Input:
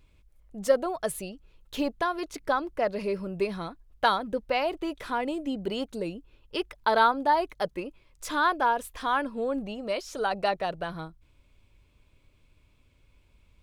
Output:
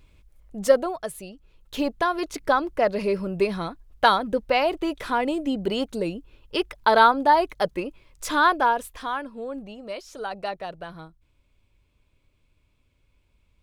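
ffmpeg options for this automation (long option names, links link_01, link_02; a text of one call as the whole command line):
ffmpeg -i in.wav -af "volume=14.5dB,afade=type=out:start_time=0.72:duration=0.39:silence=0.354813,afade=type=in:start_time=1.11:duration=1.12:silence=0.334965,afade=type=out:start_time=8.47:duration=0.73:silence=0.334965" out.wav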